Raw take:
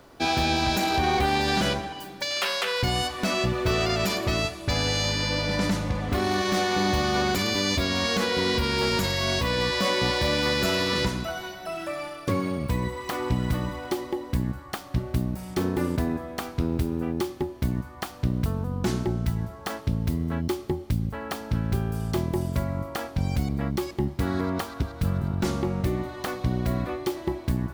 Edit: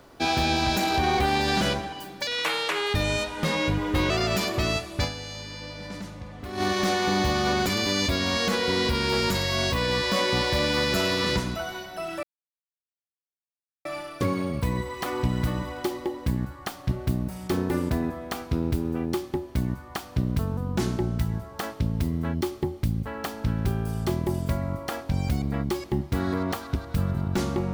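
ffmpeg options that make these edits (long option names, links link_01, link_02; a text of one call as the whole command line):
ffmpeg -i in.wav -filter_complex "[0:a]asplit=6[link_01][link_02][link_03][link_04][link_05][link_06];[link_01]atrim=end=2.274[link_07];[link_02]atrim=start=2.27:end=3.79,asetpts=PTS-STARTPTS,asetrate=36603,aresample=44100,atrim=end_sample=80761,asetpts=PTS-STARTPTS[link_08];[link_03]atrim=start=3.786:end=5.12,asetpts=PTS-STARTPTS,afade=type=out:start_time=0.944:duration=0.39:curve=exp:silence=0.251189[link_09];[link_04]atrim=start=5.12:end=5.91,asetpts=PTS-STARTPTS,volume=-12dB[link_10];[link_05]atrim=start=5.91:end=11.92,asetpts=PTS-STARTPTS,afade=type=in:duration=0.39:curve=exp:silence=0.251189,afade=type=out:start_time=6.006:duration=0.004:curve=hsin,apad=pad_dur=1.62[link_11];[link_06]atrim=start=11.92,asetpts=PTS-STARTPTS,afade=type=in:duration=0.004:curve=hsin[link_12];[link_07][link_08]acrossfade=duration=0.004:curve1=hsin:curve2=hsin[link_13];[link_09][link_10][link_11][link_12]concat=n=4:v=0:a=1[link_14];[link_13][link_14]acrossfade=duration=0.004:curve1=hsin:curve2=hsin" out.wav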